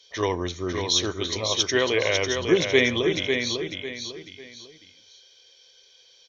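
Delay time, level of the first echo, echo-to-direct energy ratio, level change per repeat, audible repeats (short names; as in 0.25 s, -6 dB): 0.549 s, -5.5 dB, -5.0 dB, -9.5 dB, 3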